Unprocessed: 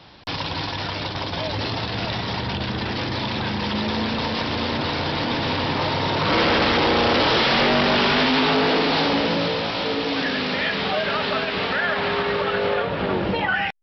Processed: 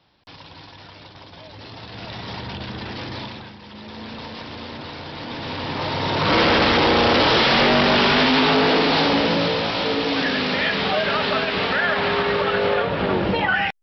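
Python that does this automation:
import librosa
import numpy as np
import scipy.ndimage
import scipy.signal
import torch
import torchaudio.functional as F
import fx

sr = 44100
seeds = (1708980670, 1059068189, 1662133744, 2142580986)

y = fx.gain(x, sr, db=fx.line((1.51, -15.0), (2.29, -5.5), (3.21, -5.5), (3.59, -17.5), (4.12, -10.0), (5.09, -10.0), (6.3, 2.0)))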